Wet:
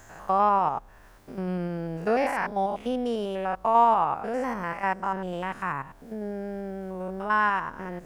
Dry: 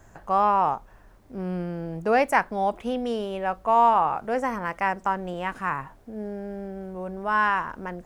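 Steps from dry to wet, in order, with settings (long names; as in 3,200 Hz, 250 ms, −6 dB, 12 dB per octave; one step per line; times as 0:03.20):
spectrum averaged block by block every 100 ms
one half of a high-frequency compander encoder only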